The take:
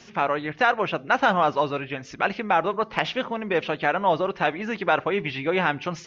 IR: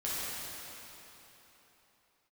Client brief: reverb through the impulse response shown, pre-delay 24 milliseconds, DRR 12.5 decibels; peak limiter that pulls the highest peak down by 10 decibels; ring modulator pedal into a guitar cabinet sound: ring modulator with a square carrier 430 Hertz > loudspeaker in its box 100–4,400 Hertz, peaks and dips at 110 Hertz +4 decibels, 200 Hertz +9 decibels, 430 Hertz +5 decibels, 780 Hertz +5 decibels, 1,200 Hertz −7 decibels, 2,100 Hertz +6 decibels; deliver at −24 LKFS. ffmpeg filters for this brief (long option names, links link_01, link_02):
-filter_complex "[0:a]alimiter=limit=-16.5dB:level=0:latency=1,asplit=2[link_01][link_02];[1:a]atrim=start_sample=2205,adelay=24[link_03];[link_02][link_03]afir=irnorm=-1:irlink=0,volume=-19dB[link_04];[link_01][link_04]amix=inputs=2:normalize=0,aeval=exprs='val(0)*sgn(sin(2*PI*430*n/s))':channel_layout=same,highpass=100,equalizer=frequency=110:width_type=q:width=4:gain=4,equalizer=frequency=200:width_type=q:width=4:gain=9,equalizer=frequency=430:width_type=q:width=4:gain=5,equalizer=frequency=780:width_type=q:width=4:gain=5,equalizer=frequency=1200:width_type=q:width=4:gain=-7,equalizer=frequency=2100:width_type=q:width=4:gain=6,lowpass=frequency=4400:width=0.5412,lowpass=frequency=4400:width=1.3066,volume=2dB"